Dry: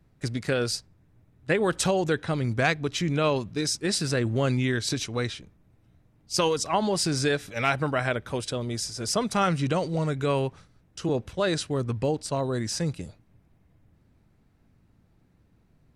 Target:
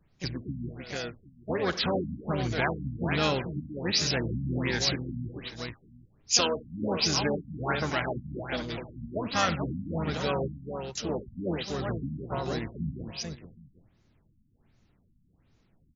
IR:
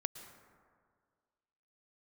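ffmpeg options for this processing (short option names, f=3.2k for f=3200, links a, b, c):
-filter_complex "[0:a]asplit=3[a][b][c];[b]asetrate=22050,aresample=44100,atempo=2,volume=-8dB[d];[c]asetrate=58866,aresample=44100,atempo=0.749154,volume=-7dB[e];[a][d][e]amix=inputs=3:normalize=0,crystalizer=i=5:c=0,asplit=2[f][g];[g]aecho=0:1:52|91|276|440|770:0.15|0.141|0.106|0.473|0.106[h];[f][h]amix=inputs=2:normalize=0,afftfilt=real='re*lt(b*sr/1024,260*pow(7300/260,0.5+0.5*sin(2*PI*1.3*pts/sr)))':imag='im*lt(b*sr/1024,260*pow(7300/260,0.5+0.5*sin(2*PI*1.3*pts/sr)))':win_size=1024:overlap=0.75,volume=-6.5dB"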